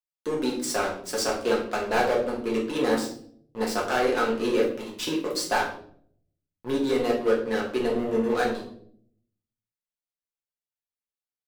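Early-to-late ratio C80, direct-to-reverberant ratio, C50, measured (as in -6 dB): 10.0 dB, -3.5 dB, 6.5 dB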